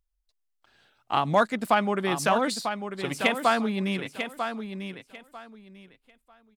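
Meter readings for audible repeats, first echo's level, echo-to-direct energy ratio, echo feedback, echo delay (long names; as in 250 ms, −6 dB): 2, −8.0 dB, −8.0 dB, 21%, 945 ms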